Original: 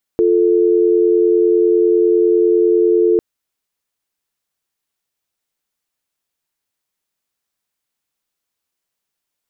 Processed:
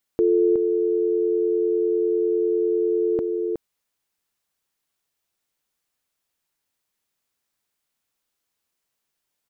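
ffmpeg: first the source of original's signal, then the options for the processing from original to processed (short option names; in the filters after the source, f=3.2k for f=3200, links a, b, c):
-f lavfi -i "aevalsrc='0.237*(sin(2*PI*350*t)+sin(2*PI*440*t))':d=3:s=44100"
-filter_complex "[0:a]alimiter=limit=-12dB:level=0:latency=1:release=63,asplit=2[a][b];[b]adelay=367.3,volume=-7dB,highshelf=f=4k:g=-8.27[c];[a][c]amix=inputs=2:normalize=0"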